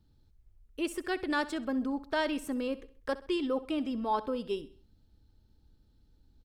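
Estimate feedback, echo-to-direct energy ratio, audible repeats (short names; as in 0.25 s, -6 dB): 43%, -16.0 dB, 3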